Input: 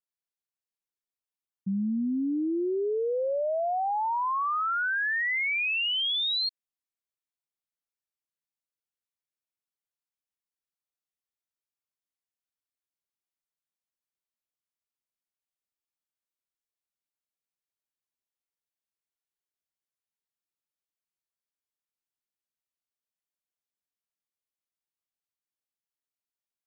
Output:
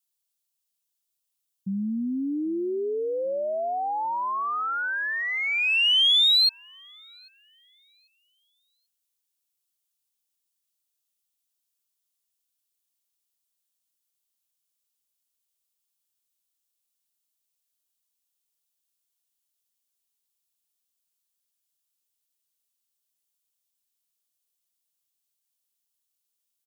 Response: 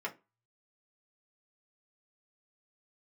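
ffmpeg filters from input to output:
-filter_complex "[0:a]aexciter=amount=2.3:drive=8.1:freq=2800,asplit=2[link_01][link_02];[link_02]adelay=792,lowpass=frequency=1900:poles=1,volume=-24dB,asplit=2[link_03][link_04];[link_04]adelay=792,lowpass=frequency=1900:poles=1,volume=0.52,asplit=2[link_05][link_06];[link_06]adelay=792,lowpass=frequency=1900:poles=1,volume=0.52[link_07];[link_01][link_03][link_05][link_07]amix=inputs=4:normalize=0"

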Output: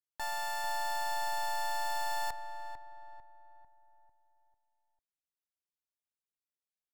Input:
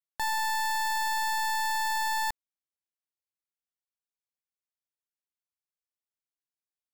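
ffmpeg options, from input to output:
ffmpeg -i in.wav -filter_complex "[0:a]asplit=2[link_01][link_02];[link_02]adelay=447,lowpass=frequency=1500:poles=1,volume=-7dB,asplit=2[link_03][link_04];[link_04]adelay=447,lowpass=frequency=1500:poles=1,volume=0.48,asplit=2[link_05][link_06];[link_06]adelay=447,lowpass=frequency=1500:poles=1,volume=0.48,asplit=2[link_07][link_08];[link_08]adelay=447,lowpass=frequency=1500:poles=1,volume=0.48,asplit=2[link_09][link_10];[link_10]adelay=447,lowpass=frequency=1500:poles=1,volume=0.48,asplit=2[link_11][link_12];[link_12]adelay=447,lowpass=frequency=1500:poles=1,volume=0.48[link_13];[link_01][link_03][link_05][link_07][link_09][link_11][link_13]amix=inputs=7:normalize=0,asplit=3[link_14][link_15][link_16];[link_15]asetrate=29433,aresample=44100,atempo=1.49831,volume=-15dB[link_17];[link_16]asetrate=35002,aresample=44100,atempo=1.25992,volume=-9dB[link_18];[link_14][link_17][link_18]amix=inputs=3:normalize=0,volume=-8dB" out.wav

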